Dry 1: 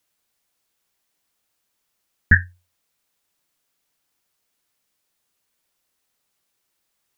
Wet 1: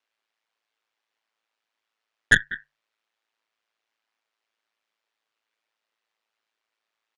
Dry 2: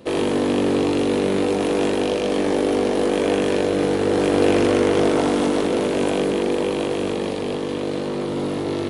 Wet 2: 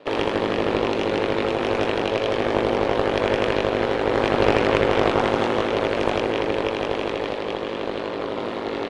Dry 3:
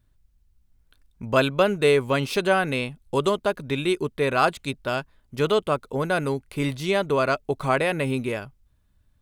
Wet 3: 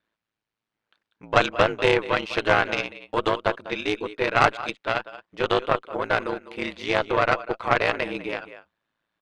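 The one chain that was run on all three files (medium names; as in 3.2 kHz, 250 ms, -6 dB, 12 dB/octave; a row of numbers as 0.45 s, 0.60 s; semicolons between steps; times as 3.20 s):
band-pass 270–3100 Hz; delay 197 ms -15 dB; ring modulator 55 Hz; bass shelf 400 Hz -11 dB; Chebyshev shaper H 6 -17 dB, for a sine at -6 dBFS; peak normalisation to -1.5 dBFS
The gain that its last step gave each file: +3.0 dB, +6.5 dB, +6.0 dB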